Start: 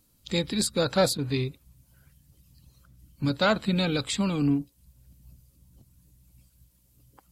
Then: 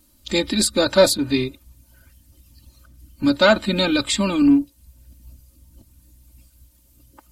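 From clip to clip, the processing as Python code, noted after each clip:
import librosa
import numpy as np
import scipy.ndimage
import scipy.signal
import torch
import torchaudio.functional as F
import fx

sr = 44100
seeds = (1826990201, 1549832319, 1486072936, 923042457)

y = x + 0.89 * np.pad(x, (int(3.3 * sr / 1000.0), 0))[:len(x)]
y = y * librosa.db_to_amplitude(5.5)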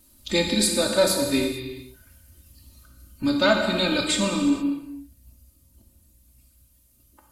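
y = fx.rider(x, sr, range_db=4, speed_s=0.5)
y = fx.peak_eq(y, sr, hz=11000.0, db=5.0, octaves=0.63)
y = fx.rev_gated(y, sr, seeds[0], gate_ms=490, shape='falling', drr_db=1.0)
y = y * librosa.db_to_amplitude(-5.5)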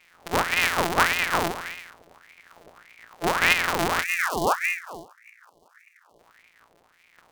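y = np.r_[np.sort(x[:len(x) // 256 * 256].reshape(-1, 256), axis=1).ravel(), x[len(x) // 256 * 256:]]
y = fx.spec_box(y, sr, start_s=4.04, length_s=2.15, low_hz=630.0, high_hz=3300.0, gain_db=-26)
y = fx.ring_lfo(y, sr, carrier_hz=1400.0, swing_pct=65, hz=1.7)
y = y * librosa.db_to_amplitude(1.5)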